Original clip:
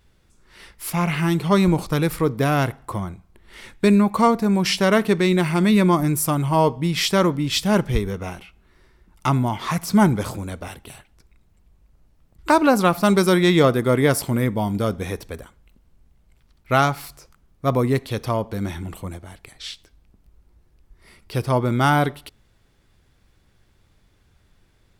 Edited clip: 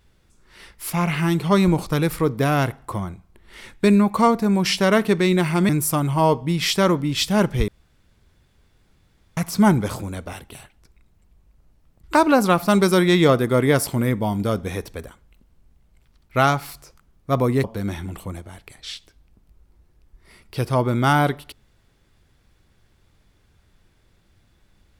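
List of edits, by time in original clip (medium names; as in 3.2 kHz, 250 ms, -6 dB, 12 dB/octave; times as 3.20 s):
5.69–6.04 s: delete
8.03–9.72 s: room tone
17.99–18.41 s: delete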